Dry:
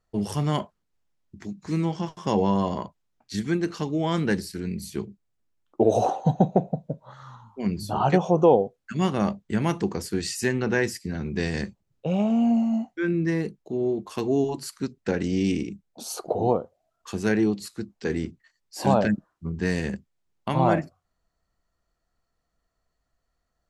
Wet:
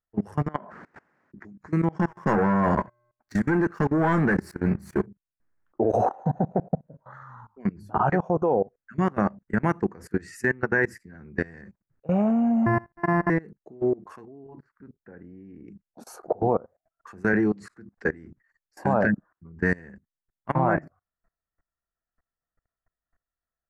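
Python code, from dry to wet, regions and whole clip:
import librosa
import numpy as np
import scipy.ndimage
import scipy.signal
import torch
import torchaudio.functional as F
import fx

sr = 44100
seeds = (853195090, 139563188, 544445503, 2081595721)

y = fx.chain(x, sr, fx.bandpass_edges(low_hz=200.0, high_hz=4400.0),
    fx.sustainer(db_per_s=58.0), at=(0.48, 1.45))
y = fx.chain(y, sr, fx.leveller(passes=3),
    fx.comb_fb(f0_hz=120.0, decay_s=0.59, harmonics='odd', damping=0.0, mix_pct=40), at=(1.99, 5.06))
y = fx.chain(y, sr, fx.sample_sort(block=128),
    fx.moving_average(points=13),
    fx.comb(ms=1.1, depth=0.62), at=(12.66, 13.3))
y = fx.chain(y, sr, fx.level_steps(step_db=9),
    fx.spacing_loss(db_at_10k=39), at=(14.25, 15.68))
y = fx.chain(y, sr, fx.lowpass(hz=9200.0, slope=24),
    fx.band_squash(depth_pct=40), at=(17.33, 18.05))
y = fx.high_shelf_res(y, sr, hz=2400.0, db=-12.0, q=3.0)
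y = fx.level_steps(y, sr, step_db=24)
y = F.gain(torch.from_numpy(y), 3.0).numpy()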